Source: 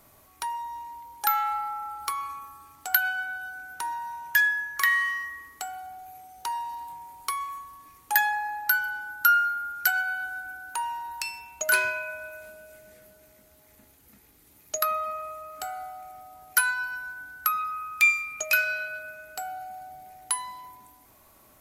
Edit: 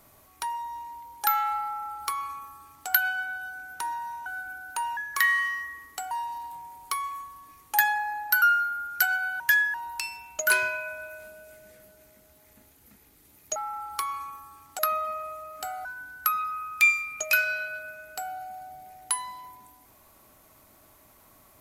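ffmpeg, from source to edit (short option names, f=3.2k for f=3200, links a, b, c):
-filter_complex "[0:a]asplit=10[a][b][c][d][e][f][g][h][i][j];[a]atrim=end=4.262[k];[b]atrim=start=10.248:end=10.962[l];[c]atrim=start=4.598:end=5.742[m];[d]atrim=start=6.478:end=8.792[n];[e]atrim=start=9.268:end=10.252[o];[f]atrim=start=4.258:end=4.602[p];[g]atrim=start=10.958:end=14.782[q];[h]atrim=start=1.648:end=2.882[r];[i]atrim=start=14.778:end=15.842[s];[j]atrim=start=17.048[t];[k][l]acrossfade=d=0.004:c1=hsin:c2=hsin[u];[u][m]acrossfade=d=0.004:c1=hsin:c2=hsin[v];[v][n]acrossfade=d=0.004:c1=hsin:c2=hsin[w];[w][o]acrossfade=d=0.004:c1=hsin:c2=hsin[x];[x][p]acrossfade=d=0.004:c1=hsin:c2=hsin[y];[y][q]acrossfade=d=0.004:c1=hsin:c2=hsin[z];[z][r]acrossfade=d=0.004:c1=hsin:c2=hsin[aa];[aa][s]acrossfade=d=0.004:c1=hsin:c2=hsin[ab];[ab][t]acrossfade=d=0.004:c1=hsin:c2=hsin"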